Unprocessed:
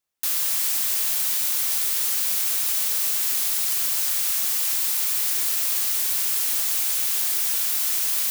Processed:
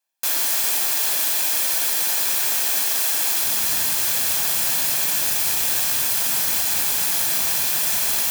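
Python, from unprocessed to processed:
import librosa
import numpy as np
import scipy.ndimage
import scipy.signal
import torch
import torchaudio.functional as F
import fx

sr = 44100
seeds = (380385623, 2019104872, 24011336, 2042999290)

y = fx.lower_of_two(x, sr, delay_ms=1.2)
y = fx.highpass(y, sr, hz=fx.steps((0.0, 250.0), (3.46, 72.0)), slope=24)
y = y * librosa.db_to_amplitude(4.0)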